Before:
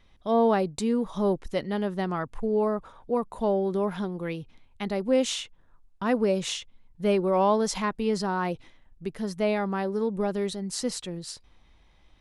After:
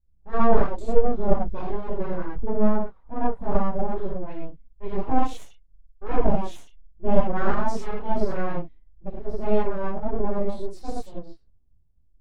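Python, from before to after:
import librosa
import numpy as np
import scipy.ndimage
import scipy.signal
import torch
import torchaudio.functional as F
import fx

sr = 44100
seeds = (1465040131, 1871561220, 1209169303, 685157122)

y = fx.low_shelf(x, sr, hz=380.0, db=10.0)
y = fx.rev_gated(y, sr, seeds[0], gate_ms=150, shape='flat', drr_db=-7.0)
y = fx.env_lowpass(y, sr, base_hz=620.0, full_db=-13.5)
y = np.abs(y)
y = fx.spectral_expand(y, sr, expansion=1.5)
y = y * 10.0 ** (-3.5 / 20.0)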